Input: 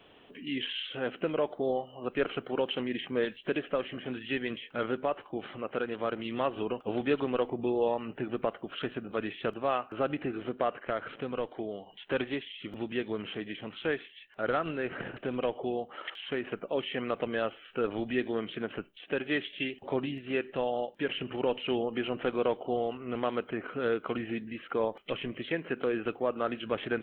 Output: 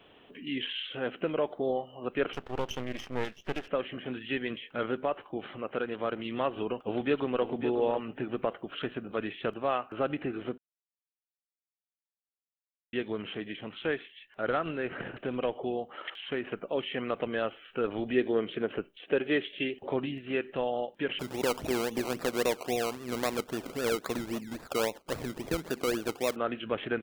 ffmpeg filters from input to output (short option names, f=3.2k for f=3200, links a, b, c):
-filter_complex "[0:a]asettb=1/sr,asplit=3[a][b][c];[a]atrim=end=2.334[d];[b]atrim=start=2.33:end=3.68,asetpts=PTS-STARTPTS,afade=t=in:d=0.004:c=qsin,afade=t=out:st=1.346:d=0.004:c=qsin,aeval=exprs='max(val(0),0)':c=same[e];[c]atrim=start=3.676[f];[d][e]acrossfade=d=0.004:c1=hsin:c2=qsin[g];[g][f]acrossfade=d=0.004:c1=qsin:c2=hsin,asplit=2[h][i];[i]afade=t=in:st=6.78:d=0.01,afade=t=out:st=7.45:d=0.01,aecho=0:1:550|1100|1650:0.354813|0.0709627|0.0141925[j];[h][j]amix=inputs=2:normalize=0,asettb=1/sr,asplit=3[k][l][m];[k]atrim=end=18.034[n];[l]atrim=start=18.03:end=19.91,asetpts=PTS-STARTPTS,afade=t=in:d=0.004:c=qsin,afade=t=out:st=1.876:d=0.004:c=qsin,equalizer=f=440:w=1.5:g=6[o];[m]atrim=start=19.906[p];[n][o]acrossfade=d=0.004:c1=hsin:c2=qsin[q];[q][p]acrossfade=d=0.004:c1=qsin:c2=hsin,asettb=1/sr,asplit=3[r][s][t];[r]atrim=end=21.194[u];[s]atrim=start=21.19:end=26.36,asetpts=PTS-STARTPTS,afade=t=in:d=0.004:c=qsin,afade=t=out:st=5.166:d=0.004:c=qsin,acrusher=samples=20:mix=1:aa=0.000001:lfo=1:lforange=12:lforate=3.7[v];[t]atrim=start=26.356[w];[u][v]acrossfade=d=0.004:c1=hsin:c2=qsin[x];[x][w]acrossfade=d=0.004:c1=qsin:c2=hsin,asplit=3[y][z][aa];[y]atrim=end=10.58,asetpts=PTS-STARTPTS,afade=t=out:st=10.576:d=0.004:c=hsin[ab];[z]atrim=start=10.58:end=12.93,asetpts=PTS-STARTPTS,volume=0[ac];[aa]atrim=start=12.93,asetpts=PTS-STARTPTS,afade=t=in:d=0.004:c=hsin[ad];[ab][ac][ad]concat=n=3:v=0:a=1"